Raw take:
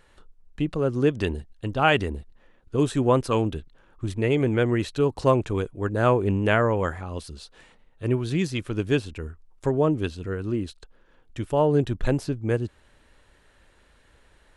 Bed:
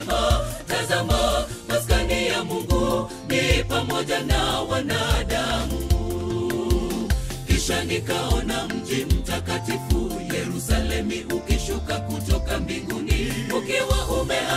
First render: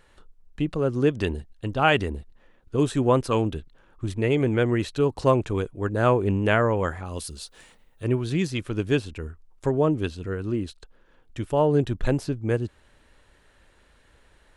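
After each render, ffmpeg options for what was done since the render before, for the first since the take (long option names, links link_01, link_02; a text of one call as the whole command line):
ffmpeg -i in.wav -filter_complex "[0:a]asettb=1/sr,asplit=3[link_01][link_02][link_03];[link_01]atrim=end=7.054[link_04];[link_02]atrim=start=7.05:end=8.04,asetpts=PTS-STARTPTS,afade=type=in:duration=0.004:curve=qsin,afade=type=out:start_time=0.986:duration=0.004:curve=qsin,aemphasis=mode=production:type=50fm[link_05];[link_03]atrim=start=8.036[link_06];[link_04][link_05]acrossfade=duration=0.004:curve1=hsin:curve2=qsin[link_07];[link_07][link_06]acrossfade=duration=0.004:curve1=qsin:curve2=hsin" out.wav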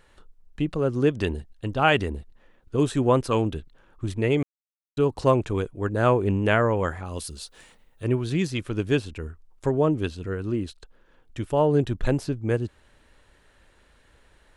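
ffmpeg -i in.wav -filter_complex "[0:a]asplit=3[link_01][link_02][link_03];[link_01]atrim=end=4.43,asetpts=PTS-STARTPTS,afade=type=out:start_time=4.426:duration=0.004:curve=hsin[link_04];[link_02]atrim=start=4.43:end=4.97,asetpts=PTS-STARTPTS,volume=0[link_05];[link_03]atrim=start=4.97,asetpts=PTS-STARTPTS,afade=type=in:duration=0.004:curve=hsin[link_06];[link_04][link_05][link_06]concat=n=3:v=0:a=1" out.wav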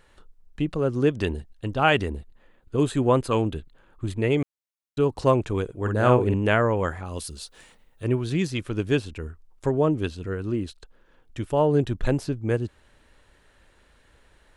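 ffmpeg -i in.wav -filter_complex "[0:a]asettb=1/sr,asplit=3[link_01][link_02][link_03];[link_01]atrim=end=2.174[link_04];[link_02]atrim=start=2.17:end=4.33,asetpts=PTS-STARTPTS,afade=type=in:duration=0.004:curve=qsin,afade=type=out:start_time=2.156:duration=0.004:curve=qsin,bandreject=frequency=5600:width=5.7[link_05];[link_03]atrim=start=4.326[link_06];[link_04][link_05]acrossfade=duration=0.004:curve1=hsin:curve2=qsin[link_07];[link_07][link_06]acrossfade=duration=0.004:curve1=qsin:curve2=hsin,asettb=1/sr,asplit=3[link_08][link_09][link_10];[link_08]atrim=end=5.644[link_11];[link_09]atrim=start=5.64:end=6.34,asetpts=PTS-STARTPTS,afade=type=in:duration=0.004:curve=qsin,afade=type=out:start_time=0.696:duration=0.004:curve=qsin,asplit=2[link_12][link_13];[link_13]adelay=48,volume=-4.5dB[link_14];[link_12][link_14]amix=inputs=2:normalize=0,atrim=end_sample=30870[link_15];[link_10]atrim=start=6.336[link_16];[link_11][link_15]acrossfade=duration=0.004:curve1=hsin:curve2=qsin[link_17];[link_17][link_16]acrossfade=duration=0.004:curve1=qsin:curve2=hsin" out.wav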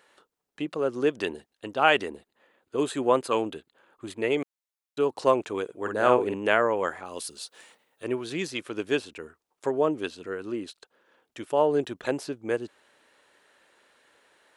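ffmpeg -i in.wav -af "highpass=360" out.wav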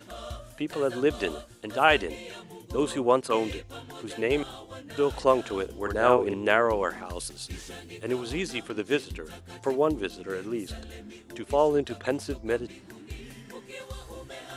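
ffmpeg -i in.wav -i bed.wav -filter_complex "[1:a]volume=-19dB[link_01];[0:a][link_01]amix=inputs=2:normalize=0" out.wav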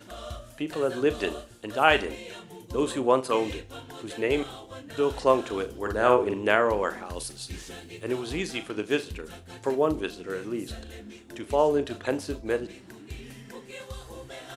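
ffmpeg -i in.wav -filter_complex "[0:a]asplit=2[link_01][link_02];[link_02]adelay=38,volume=-12.5dB[link_03];[link_01][link_03]amix=inputs=2:normalize=0,aecho=1:1:77|154|231:0.075|0.0352|0.0166" out.wav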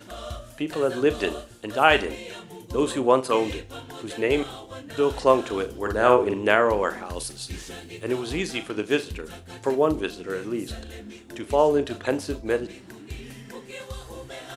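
ffmpeg -i in.wav -af "volume=3dB,alimiter=limit=-2dB:level=0:latency=1" out.wav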